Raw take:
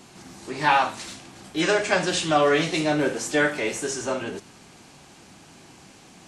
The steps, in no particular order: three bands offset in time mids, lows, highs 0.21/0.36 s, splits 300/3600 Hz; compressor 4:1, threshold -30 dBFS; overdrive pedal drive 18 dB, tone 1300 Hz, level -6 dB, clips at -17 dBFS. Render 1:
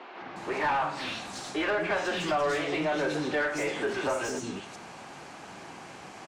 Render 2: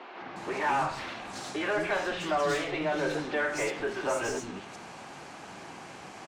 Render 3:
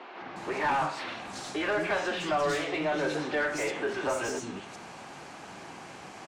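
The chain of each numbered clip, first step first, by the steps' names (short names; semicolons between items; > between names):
three bands offset in time > compressor > overdrive pedal; compressor > overdrive pedal > three bands offset in time; compressor > three bands offset in time > overdrive pedal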